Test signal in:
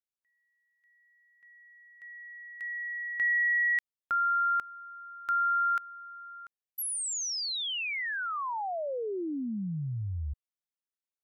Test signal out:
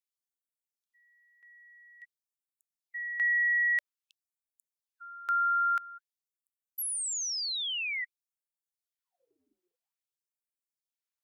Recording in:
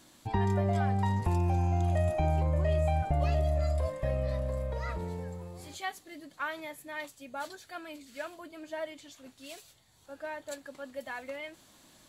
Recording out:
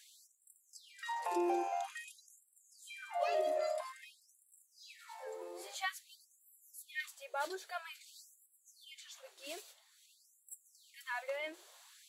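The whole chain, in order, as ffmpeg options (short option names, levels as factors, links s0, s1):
-af "equalizer=f=380:w=4.2:g=6.5,afftfilt=real='re*gte(b*sr/1024,300*pow(7500/300,0.5+0.5*sin(2*PI*0.5*pts/sr)))':imag='im*gte(b*sr/1024,300*pow(7500/300,0.5+0.5*sin(2*PI*0.5*pts/sr)))':win_size=1024:overlap=0.75"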